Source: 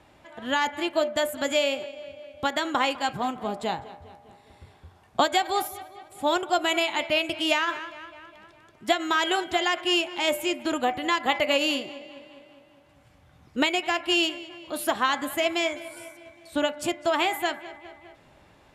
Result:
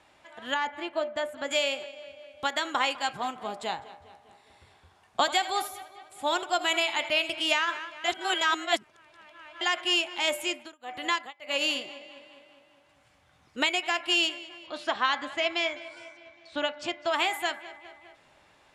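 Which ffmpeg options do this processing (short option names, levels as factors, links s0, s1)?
-filter_complex "[0:a]asettb=1/sr,asplit=3[s0][s1][s2];[s0]atrim=end=0.544[s3];[s1]atrim=start=0.54:end=1.51,asetpts=PTS-STARTPTS,afade=t=in:d=0.004:c=qsin,afade=t=out:st=0.966:d=0.004:c=qsin,lowpass=f=1500:p=1[s4];[s2]atrim=start=1.506[s5];[s3][s4]acrossfade=d=0.004:c1=hsin:c2=qsin[s6];[s6][s5]acrossfade=d=0.004:c1=qsin:c2=hsin,asettb=1/sr,asplit=3[s7][s8][s9];[s7]atrim=end=4.054[s10];[s8]atrim=start=4.05:end=7.53,asetpts=PTS-STARTPTS,afade=t=in:d=0.004:c=qsin,afade=t=out:st=3.476:d=0.004:c=qsin,aecho=1:1:83:0.178,atrim=end_sample=153468[s11];[s9]atrim=start=7.526[s12];[s10][s11]acrossfade=d=0.004:c1=hsin:c2=qsin[s13];[s13][s12]acrossfade=d=0.004:c1=qsin:c2=hsin,asettb=1/sr,asplit=3[s14][s15][s16];[s14]atrim=end=10.484[s17];[s15]atrim=start=10.48:end=11.76,asetpts=PTS-STARTPTS,afade=t=in:d=0.004:c=qsin,afade=t=out:st=1.276:d=0.004:c=qsin,tremolo=f=1.7:d=0.98[s18];[s16]atrim=start=11.756[s19];[s17][s18]acrossfade=d=0.004:c1=hsin:c2=qsin[s20];[s20][s19]acrossfade=d=0.004:c1=qsin:c2=hsin,asettb=1/sr,asplit=3[s21][s22][s23];[s21]atrim=end=14.664[s24];[s22]atrim=start=14.66:end=17.11,asetpts=PTS-STARTPTS,afade=t=in:d=0.004:c=qsin,afade=t=out:st=2.446:d=0.004:c=qsin,lowpass=f=5600:w=0.5412,lowpass=f=5600:w=1.3066[s25];[s23]atrim=start=17.106[s26];[s24][s25]acrossfade=d=0.004:c1=hsin:c2=qsin[s27];[s27][s26]acrossfade=d=0.004:c1=qsin:c2=hsin,asplit=3[s28][s29][s30];[s28]atrim=end=8.042[s31];[s29]atrim=start=8.038:end=9.612,asetpts=PTS-STARTPTS,areverse[s32];[s30]atrim=start=9.608[s33];[s31][s32]acrossfade=d=0.004:c1=hsin:c2=hsin[s34];[s34][s33]acrossfade=d=0.004:c1=hsin:c2=hsin,lowpass=f=11000:w=0.5412,lowpass=f=11000:w=1.3066,lowshelf=f=490:g=-12"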